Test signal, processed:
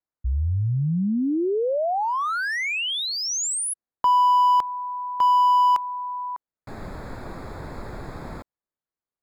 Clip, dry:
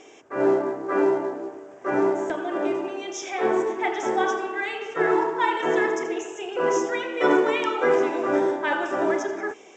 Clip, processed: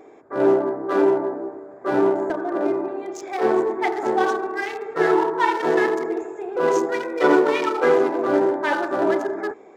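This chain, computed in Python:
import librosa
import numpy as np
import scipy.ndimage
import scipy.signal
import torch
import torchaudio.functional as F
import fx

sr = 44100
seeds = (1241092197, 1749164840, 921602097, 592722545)

y = fx.wiener(x, sr, points=15)
y = F.gain(torch.from_numpy(y), 3.5).numpy()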